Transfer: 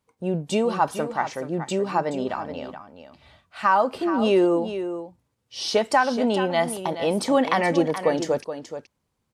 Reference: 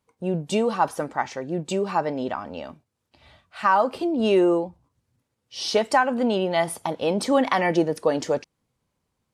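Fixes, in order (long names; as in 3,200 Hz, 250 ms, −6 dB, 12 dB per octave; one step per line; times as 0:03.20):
echo removal 425 ms −10.5 dB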